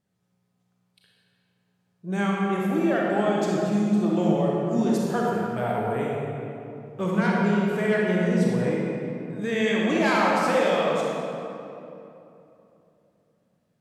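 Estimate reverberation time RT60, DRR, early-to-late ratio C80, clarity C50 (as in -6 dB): 3.0 s, -4.0 dB, -1.0 dB, -2.5 dB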